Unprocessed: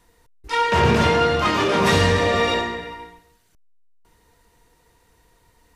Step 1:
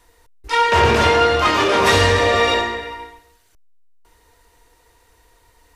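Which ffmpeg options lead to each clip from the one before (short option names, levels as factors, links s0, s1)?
-af "equalizer=f=170:w=1.6:g=-14.5,volume=1.68"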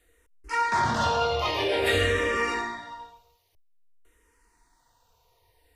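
-filter_complex "[0:a]asplit=2[s0][s1];[s1]afreqshift=-0.51[s2];[s0][s2]amix=inputs=2:normalize=1,volume=0.447"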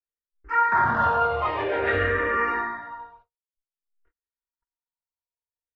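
-af "agate=range=0.00891:threshold=0.00158:ratio=16:detection=peak,lowpass=f=1500:t=q:w=2.7,volume=0.891"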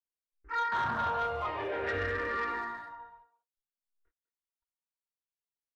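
-filter_complex "[0:a]asoftclip=type=tanh:threshold=0.141,asplit=2[s0][s1];[s1]adelay=200,highpass=300,lowpass=3400,asoftclip=type=hard:threshold=0.0447,volume=0.158[s2];[s0][s2]amix=inputs=2:normalize=0,volume=0.398"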